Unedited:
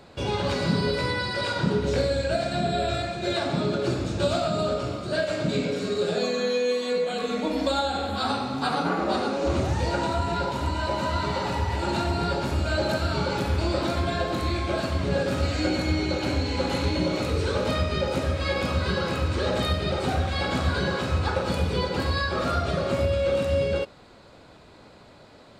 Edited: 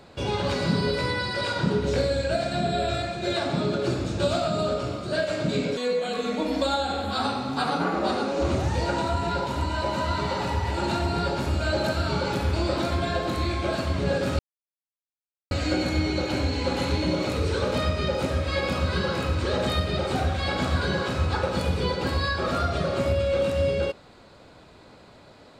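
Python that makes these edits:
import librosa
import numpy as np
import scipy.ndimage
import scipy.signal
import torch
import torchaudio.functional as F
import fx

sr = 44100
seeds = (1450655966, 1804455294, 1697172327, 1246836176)

y = fx.edit(x, sr, fx.cut(start_s=5.77, length_s=1.05),
    fx.insert_silence(at_s=15.44, length_s=1.12), tone=tone)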